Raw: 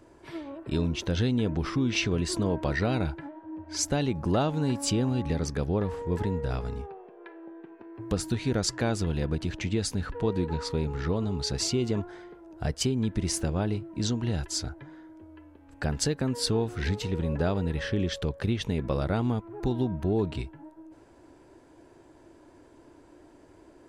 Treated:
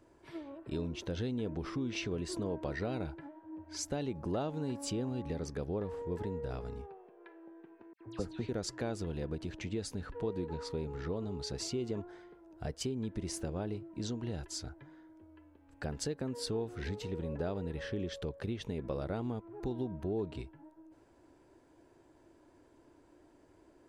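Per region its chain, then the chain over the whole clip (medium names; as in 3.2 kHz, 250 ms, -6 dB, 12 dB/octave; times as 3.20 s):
7.93–8.49 s: distance through air 76 m + phase dispersion lows, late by 77 ms, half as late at 2.1 kHz
whole clip: dynamic bell 450 Hz, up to +6 dB, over -40 dBFS, Q 0.81; compression 1.5:1, threshold -31 dBFS; trim -8.5 dB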